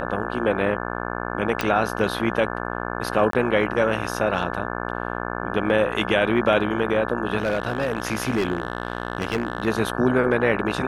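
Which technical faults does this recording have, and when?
buzz 60 Hz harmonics 29 -29 dBFS
1.61 pop -7 dBFS
3.31–3.33 gap 23 ms
7.38–9.68 clipped -17 dBFS

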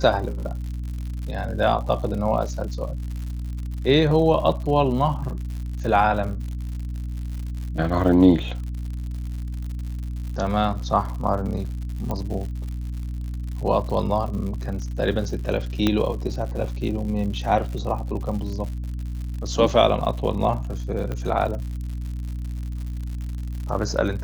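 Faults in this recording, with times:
crackle 120/s -32 dBFS
hum 60 Hz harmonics 5 -29 dBFS
12.11 pop -15 dBFS
15.87 pop -7 dBFS
21.12 pop -17 dBFS

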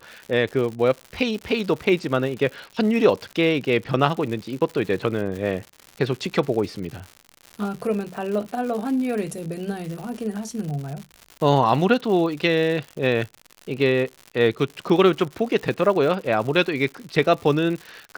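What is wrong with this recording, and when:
crackle 150/s -30 dBFS

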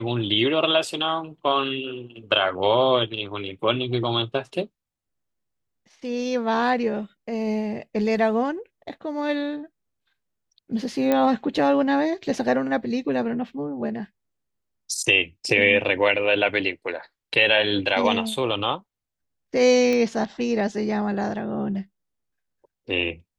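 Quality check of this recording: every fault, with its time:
11.12 pop -9 dBFS
19.93 pop -13 dBFS

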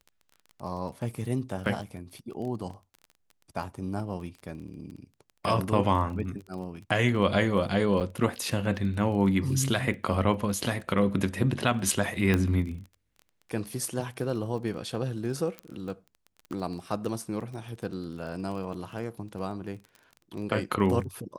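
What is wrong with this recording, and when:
crackle 18/s -37 dBFS
8–8.01 gap 7.7 ms
12.34 pop -12 dBFS
15.59 pop -22 dBFS

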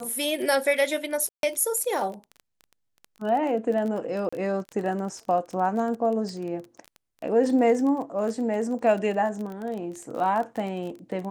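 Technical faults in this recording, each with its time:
crackle 24/s -31 dBFS
1.29–1.43 gap 0.142 s
4.29–4.33 gap 35 ms

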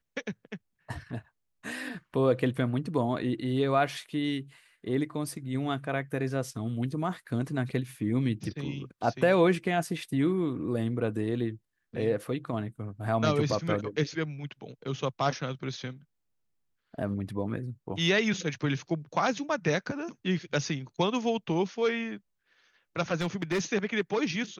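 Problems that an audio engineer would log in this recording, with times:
23.21–23.6 clipped -24 dBFS

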